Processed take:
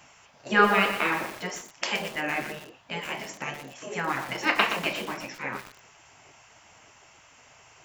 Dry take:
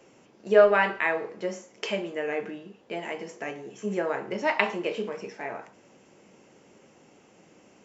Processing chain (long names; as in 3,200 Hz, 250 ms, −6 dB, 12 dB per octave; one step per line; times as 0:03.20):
gate on every frequency bin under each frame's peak −10 dB weak
feedback echo at a low word length 121 ms, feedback 55%, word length 7 bits, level −8 dB
level +8 dB